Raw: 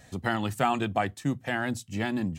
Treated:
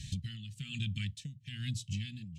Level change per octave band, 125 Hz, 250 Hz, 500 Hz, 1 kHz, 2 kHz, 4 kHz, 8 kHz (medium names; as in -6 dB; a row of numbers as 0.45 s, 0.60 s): -2.5 dB, -14.0 dB, under -35 dB, under -40 dB, -15.5 dB, -2.5 dB, -5.0 dB